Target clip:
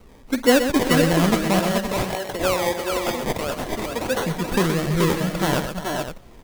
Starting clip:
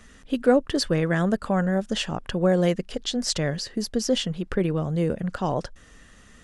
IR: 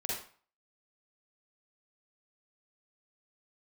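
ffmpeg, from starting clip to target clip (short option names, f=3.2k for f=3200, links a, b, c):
-filter_complex "[0:a]asettb=1/sr,asplit=3[a][b][c];[a]atrim=end=1.594[d];[b]atrim=start=1.59:end=4.23,asetpts=PTS-STARTPTS,afade=t=in:d=0.004:c=qsin,afade=t=out:st=2.636:d=0.004:c=qsin,highpass=460[e];[c]atrim=start=4.226[f];[d][e]acrossfade=d=0.004:c1=hsin:c2=qsin[g];[g][f]acrossfade=d=0.004:c1=qsin:c2=hsin,acrusher=samples=25:mix=1:aa=0.000001:lfo=1:lforange=15:lforate=1.6,aecho=1:1:48|125|329|429|432|519:0.15|0.355|0.211|0.501|0.473|0.299,volume=2.5dB"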